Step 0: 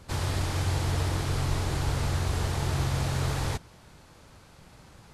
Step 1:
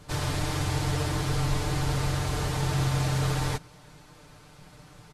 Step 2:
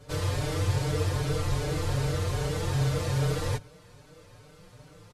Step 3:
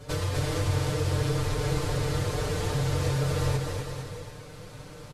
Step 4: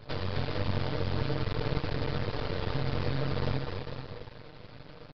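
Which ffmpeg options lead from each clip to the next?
-af "aecho=1:1:6.7:0.73"
-filter_complex "[0:a]equalizer=f=100:t=o:w=0.33:g=9,equalizer=f=500:t=o:w=0.33:g=12,equalizer=f=800:t=o:w=0.33:g=-4,asplit=2[a][b];[b]adelay=5,afreqshift=2.5[c];[a][c]amix=inputs=2:normalize=1"
-filter_complex "[0:a]acompressor=threshold=-35dB:ratio=2.5,asplit=2[a][b];[b]aecho=0:1:250|450|610|738|840.4:0.631|0.398|0.251|0.158|0.1[c];[a][c]amix=inputs=2:normalize=0,volume=6dB"
-af "aeval=exprs='max(val(0),0)':c=same,aresample=11025,aresample=44100"

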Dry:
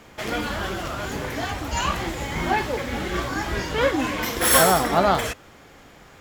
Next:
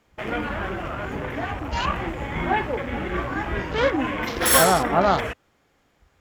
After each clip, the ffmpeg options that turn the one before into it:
-af "afwtdn=0.0224"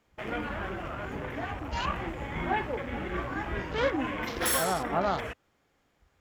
-af "alimiter=limit=-9.5dB:level=0:latency=1:release=317,volume=-6.5dB"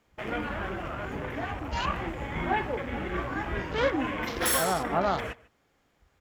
-filter_complex "[0:a]asplit=2[a][b];[b]adelay=145.8,volume=-22dB,highshelf=f=4k:g=-3.28[c];[a][c]amix=inputs=2:normalize=0,volume=1.5dB"

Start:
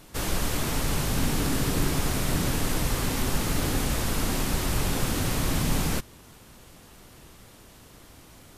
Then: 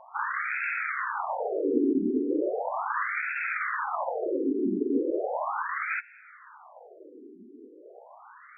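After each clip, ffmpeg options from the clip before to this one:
-af "aeval=exprs='0.251*sin(PI/2*1.78*val(0)/0.251)':c=same,afftfilt=real='re*between(b*sr/1024,300*pow(1900/300,0.5+0.5*sin(2*PI*0.37*pts/sr))/1.41,300*pow(1900/300,0.5+0.5*sin(2*PI*0.37*pts/sr))*1.41)':imag='im*between(b*sr/1024,300*pow(1900/300,0.5+0.5*sin(2*PI*0.37*pts/sr))/1.41,300*pow(1900/300,0.5+0.5*sin(2*PI*0.37*pts/sr))*1.41)':win_size=1024:overlap=0.75,volume=2dB"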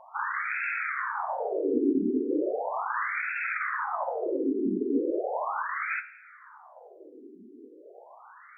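-af "bandreject=f=72.4:t=h:w=4,bandreject=f=144.8:t=h:w=4,bandreject=f=217.2:t=h:w=4,bandreject=f=289.6:t=h:w=4,bandreject=f=362:t=h:w=4,bandreject=f=434.4:t=h:w=4,bandreject=f=506.8:t=h:w=4,bandreject=f=579.2:t=h:w=4,bandreject=f=651.6:t=h:w=4,bandreject=f=724:t=h:w=4,bandreject=f=796.4:t=h:w=4,bandreject=f=868.8:t=h:w=4,bandreject=f=941.2:t=h:w=4,bandreject=f=1.0136k:t=h:w=4,bandreject=f=1.086k:t=h:w=4,bandreject=f=1.1584k:t=h:w=4,bandreject=f=1.2308k:t=h:w=4,bandreject=f=1.3032k:t=h:w=4,bandreject=f=1.3756k:t=h:w=4,bandreject=f=1.448k:t=h:w=4,bandreject=f=1.5204k:t=h:w=4,bandreject=f=1.5928k:t=h:w=4,bandreject=f=1.6652k:t=h:w=4,bandreject=f=1.7376k:t=h:w=4,bandreject=f=1.81k:t=h:w=4,bandreject=f=1.8824k:t=h:w=4,bandreject=f=1.9548k:t=h:w=4,bandreject=f=2.0272k:t=h:w=4,bandreject=f=2.0996k:t=h:w=4,bandreject=f=2.172k:t=h:w=4,bandreject=f=2.2444k:t=h:w=4,bandreject=f=2.3168k:t=h:w=4,bandreject=f=2.3892k:t=h:w=4,bandreject=f=2.4616k:t=h:w=4,bandreject=f=2.534k:t=h:w=4"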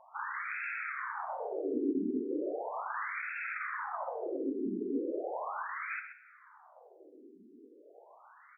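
-af "aecho=1:1:127:0.282,volume=-7.5dB"

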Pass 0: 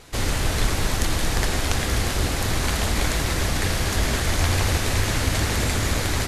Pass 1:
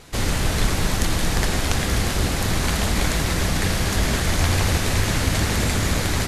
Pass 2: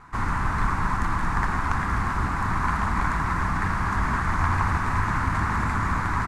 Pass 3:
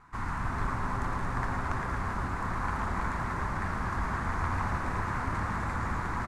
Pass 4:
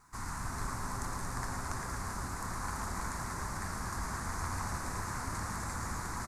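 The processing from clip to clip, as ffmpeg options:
-af "equalizer=f=180:w=2.5:g=5.5,volume=1dB"
-af "firequalizer=gain_entry='entry(240,0);entry(530,-12);entry(1000,14);entry(3100,-15);entry(8400,-14);entry(13000,-23)':delay=0.05:min_phase=1,volume=-4.5dB"
-filter_complex "[0:a]asplit=9[a][b][c][d][e][f][g][h][i];[b]adelay=113,afreqshift=-140,volume=-8dB[j];[c]adelay=226,afreqshift=-280,volume=-12.3dB[k];[d]adelay=339,afreqshift=-420,volume=-16.6dB[l];[e]adelay=452,afreqshift=-560,volume=-20.9dB[m];[f]adelay=565,afreqshift=-700,volume=-25.2dB[n];[g]adelay=678,afreqshift=-840,volume=-29.5dB[o];[h]adelay=791,afreqshift=-980,volume=-33.8dB[p];[i]adelay=904,afreqshift=-1120,volume=-38.1dB[q];[a][j][k][l][m][n][o][p][q]amix=inputs=9:normalize=0,volume=-8.5dB"
-af "aexciter=amount=8.1:drive=4.1:freq=4.5k,volume=-6.5dB"

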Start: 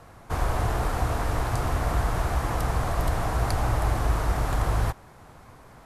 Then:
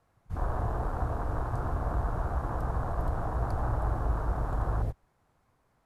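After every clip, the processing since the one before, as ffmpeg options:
-af "afwtdn=0.0398,volume=-5dB"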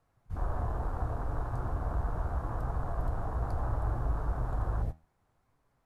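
-af "lowshelf=f=68:g=6,flanger=delay=6.9:depth=5.8:regen=75:speed=0.71:shape=sinusoidal"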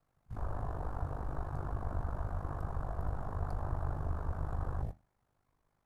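-af "aeval=exprs='val(0)*sin(2*PI*25*n/s)':c=same,volume=-1.5dB"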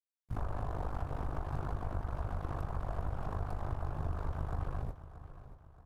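-af "acompressor=threshold=-39dB:ratio=6,aeval=exprs='sgn(val(0))*max(abs(val(0))-0.00126,0)':c=same,aecho=1:1:628|1256|1884|2512:0.2|0.0878|0.0386|0.017,volume=8dB"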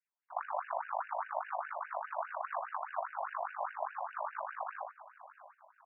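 -filter_complex "[0:a]asplit=2[a][b];[b]aeval=exprs='sgn(val(0))*max(abs(val(0))-0.00211,0)':c=same,volume=-11dB[c];[a][c]amix=inputs=2:normalize=0,afftfilt=real='re*between(b*sr/1024,750*pow(2100/750,0.5+0.5*sin(2*PI*4.9*pts/sr))/1.41,750*pow(2100/750,0.5+0.5*sin(2*PI*4.9*pts/sr))*1.41)':imag='im*between(b*sr/1024,750*pow(2100/750,0.5+0.5*sin(2*PI*4.9*pts/sr))/1.41,750*pow(2100/750,0.5+0.5*sin(2*PI*4.9*pts/sr))*1.41)':win_size=1024:overlap=0.75,volume=9.5dB"

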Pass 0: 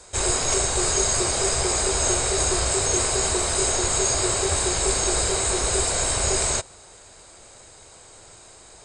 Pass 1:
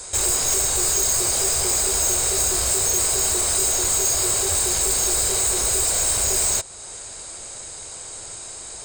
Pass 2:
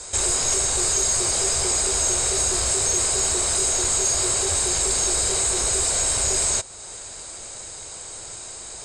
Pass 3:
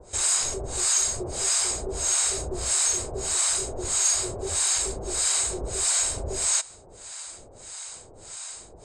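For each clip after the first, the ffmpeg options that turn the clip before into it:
-af "asoftclip=type=tanh:threshold=-19.5dB,aemphasis=mode=production:type=50kf,acompressor=threshold=-36dB:ratio=1.5,volume=5.5dB"
-af "lowpass=f=9k:w=0.5412,lowpass=f=9k:w=1.3066"
-filter_complex "[0:a]acrossover=split=750[a][b];[a]aeval=exprs='val(0)*(1-1/2+1/2*cos(2*PI*1.6*n/s))':c=same[c];[b]aeval=exprs='val(0)*(1-1/2-1/2*cos(2*PI*1.6*n/s))':c=same[d];[c][d]amix=inputs=2:normalize=0"

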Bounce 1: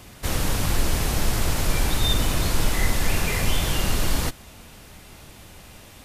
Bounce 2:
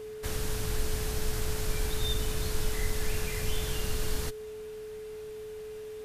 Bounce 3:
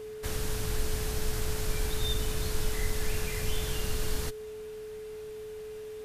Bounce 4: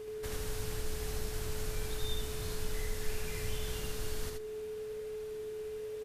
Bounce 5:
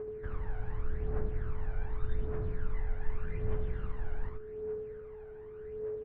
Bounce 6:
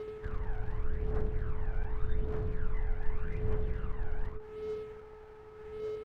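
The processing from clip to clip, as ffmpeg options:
-filter_complex "[0:a]acrossover=split=150|3000[a][b][c];[b]acompressor=threshold=-32dB:ratio=6[d];[a][d][c]amix=inputs=3:normalize=0,aeval=exprs='val(0)+0.0316*sin(2*PI*430*n/s)':c=same,equalizer=f=1.6k:w=3.4:g=4,volume=-8.5dB"
-af anull
-filter_complex "[0:a]asplit=2[a][b];[b]acompressor=threshold=-37dB:ratio=6,volume=3dB[c];[a][c]amix=inputs=2:normalize=0,flanger=delay=2.4:depth=9.8:regen=86:speed=0.97:shape=sinusoidal,aecho=1:1:77:0.708,volume=-6.5dB"
-af "lowpass=f=1.7k:w=0.5412,lowpass=f=1.7k:w=1.3066,aphaser=in_gain=1:out_gain=1:delay=1.4:decay=0.59:speed=0.85:type=triangular,volume=-2.5dB"
-af "aeval=exprs='sgn(val(0))*max(abs(val(0))-0.00282,0)':c=same,volume=1.5dB"

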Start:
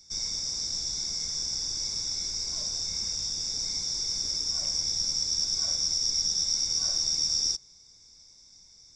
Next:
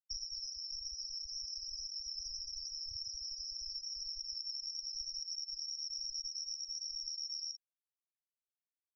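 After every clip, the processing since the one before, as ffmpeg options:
-af "acompressor=threshold=-36dB:ratio=10,lowpass=f=5.3k:w=0.5412,lowpass=f=5.3k:w=1.3066,afftfilt=real='re*gte(hypot(re,im),0.0251)':imag='im*gte(hypot(re,im),0.0251)':win_size=1024:overlap=0.75,volume=3.5dB"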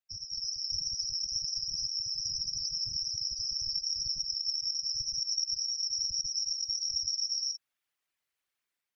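-af "equalizer=f=2k:w=0.71:g=9,dynaudnorm=f=160:g=5:m=9dB,afftfilt=real='hypot(re,im)*cos(2*PI*random(0))':imag='hypot(re,im)*sin(2*PI*random(1))':win_size=512:overlap=0.75,volume=4dB"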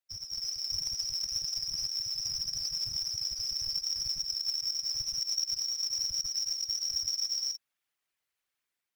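-af "acrusher=bits=4:mode=log:mix=0:aa=0.000001"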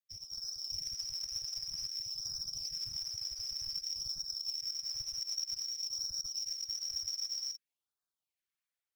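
-filter_complex "[0:a]asplit=2[a][b];[b]aeval=exprs='sgn(val(0))*max(abs(val(0))-0.00251,0)':c=same,volume=-10dB[c];[a][c]amix=inputs=2:normalize=0,afftfilt=real='re*(1-between(b*sr/1024,210*pow(2500/210,0.5+0.5*sin(2*PI*0.53*pts/sr))/1.41,210*pow(2500/210,0.5+0.5*sin(2*PI*0.53*pts/sr))*1.41))':imag='im*(1-between(b*sr/1024,210*pow(2500/210,0.5+0.5*sin(2*PI*0.53*pts/sr))/1.41,210*pow(2500/210,0.5+0.5*sin(2*PI*0.53*pts/sr))*1.41))':win_size=1024:overlap=0.75,volume=-8dB"

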